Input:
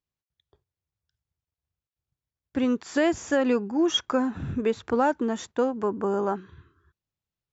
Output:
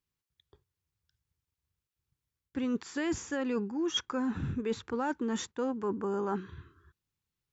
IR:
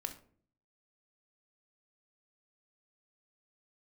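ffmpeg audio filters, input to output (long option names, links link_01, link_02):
-af "equalizer=frequency=650:width=4:gain=-12,areverse,acompressor=threshold=-32dB:ratio=6,areverse,volume=2.5dB"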